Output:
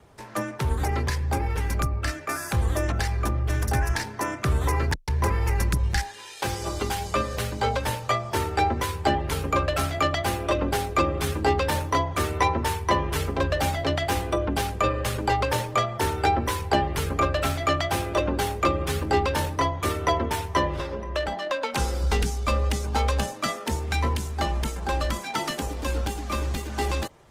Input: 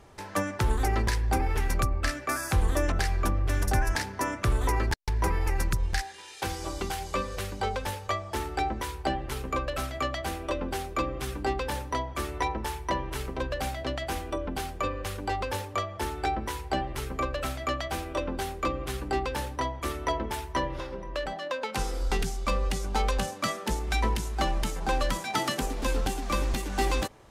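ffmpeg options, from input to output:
-af "afreqshift=20,dynaudnorm=f=750:g=17:m=2.24" -ar 48000 -c:a libopus -b:a 20k

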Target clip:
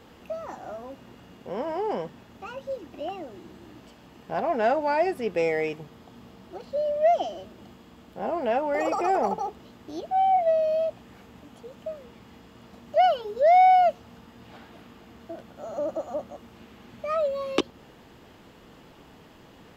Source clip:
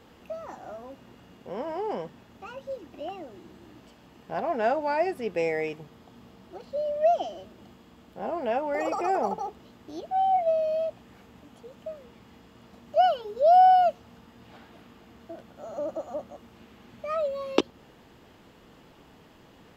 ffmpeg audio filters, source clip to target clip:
-af "asoftclip=type=tanh:threshold=0.178,volume=1.41"

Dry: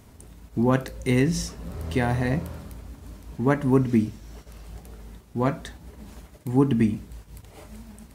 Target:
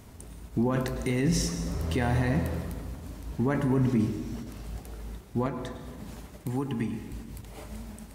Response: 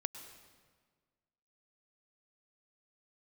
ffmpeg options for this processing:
-filter_complex "[0:a]asettb=1/sr,asplit=3[s0][s1][s2];[s0]atrim=end=5.464[s3];[s1]atrim=start=5.46:end=7.12,asetpts=PTS-STARTPTS,afade=t=in:d=0.004:c=qsin,afade=t=out:st=1.656:d=0.004:c=qsin,acrossover=split=83|1000[s4][s5][s6];[s4]acompressor=threshold=0.00355:ratio=4[s7];[s5]acompressor=threshold=0.0251:ratio=4[s8];[s6]acompressor=threshold=0.00631:ratio=4[s9];[s7][s8][s9]amix=inputs=3:normalize=0[s10];[s2]atrim=start=7.116[s11];[s3][s10]acrossfade=d=0.004:c1=hsin:c2=qsin[s12];[s12][s11]acrossfade=d=0.004:c1=qsin:c2=hsin,alimiter=limit=0.106:level=0:latency=1:release=11[s13];[1:a]atrim=start_sample=2205[s14];[s13][s14]afir=irnorm=-1:irlink=0,volume=1.33"

